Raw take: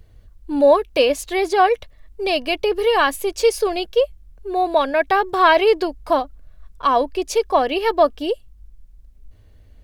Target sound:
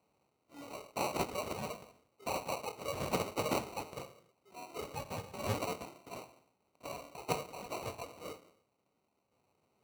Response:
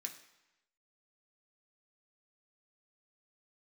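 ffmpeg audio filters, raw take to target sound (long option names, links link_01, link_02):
-filter_complex "[0:a]aderivative,acrossover=split=370|1200[link_01][link_02][link_03];[link_02]acompressor=threshold=-46dB:ratio=6[link_04];[link_01][link_04][link_03]amix=inputs=3:normalize=0[link_05];[1:a]atrim=start_sample=2205,afade=type=out:start_time=0.37:duration=0.01,atrim=end_sample=16758[link_06];[link_05][link_06]afir=irnorm=-1:irlink=0,acrusher=samples=26:mix=1:aa=0.000001,highpass=99"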